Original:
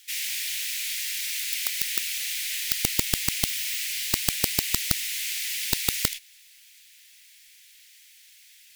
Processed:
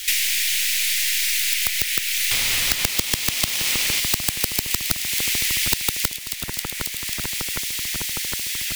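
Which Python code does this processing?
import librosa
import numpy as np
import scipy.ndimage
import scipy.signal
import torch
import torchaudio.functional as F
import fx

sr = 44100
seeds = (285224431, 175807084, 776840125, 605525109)

y = fx.halfwave_hold(x, sr, at=(2.31, 4.0))
y = fx.echo_split(y, sr, split_hz=2100.0, low_ms=761, high_ms=270, feedback_pct=52, wet_db=-12.0)
y = fx.band_squash(y, sr, depth_pct=100)
y = F.gain(torch.from_numpy(y), 3.0).numpy()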